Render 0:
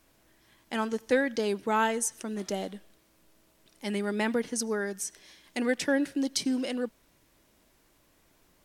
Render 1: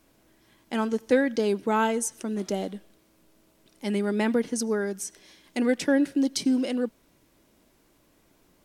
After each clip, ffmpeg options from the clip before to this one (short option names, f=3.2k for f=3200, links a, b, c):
-af "equalizer=f=270:w=0.57:g=5.5,bandreject=f=1.8k:w=26"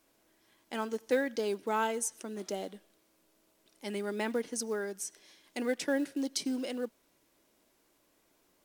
-af "bass=f=250:g=-10,treble=f=4k:g=2,acrusher=bits=7:mode=log:mix=0:aa=0.000001,volume=-6dB"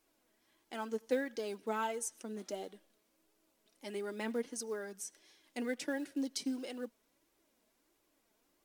-af "flanger=delay=2.2:depth=2.6:regen=42:speed=1.5:shape=triangular,volume=-1.5dB"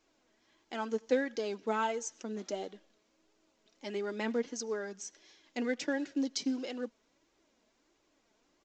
-af "aresample=16000,aresample=44100,volume=4dB"